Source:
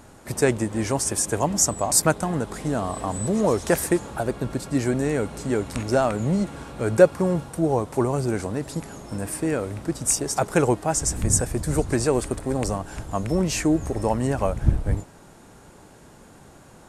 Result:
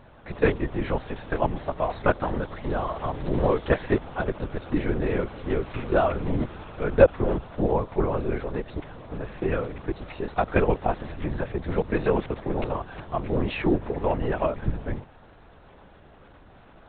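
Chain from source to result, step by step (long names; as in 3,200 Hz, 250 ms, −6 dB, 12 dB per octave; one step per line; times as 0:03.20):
low-shelf EQ 120 Hz −11.5 dB
linear-prediction vocoder at 8 kHz whisper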